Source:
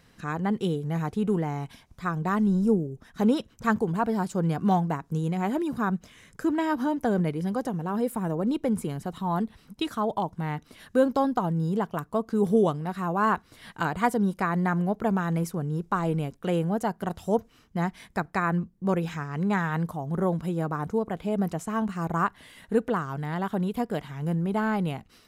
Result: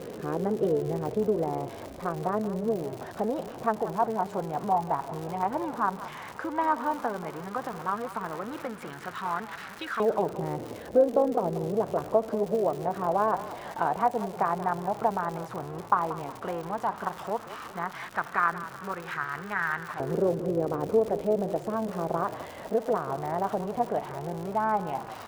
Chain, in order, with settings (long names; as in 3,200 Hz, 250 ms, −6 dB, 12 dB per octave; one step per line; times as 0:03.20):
converter with a step at zero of −32.5 dBFS
low-shelf EQ 370 Hz +5.5 dB
downward compressor, threshold −20 dBFS, peak gain reduction 7.5 dB
amplitude modulation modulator 220 Hz, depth 35%
auto-filter band-pass saw up 0.1 Hz 460–1,600 Hz
surface crackle 140 per second −42 dBFS
echo with shifted repeats 182 ms, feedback 44%, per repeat −37 Hz, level −14 dB
level +8.5 dB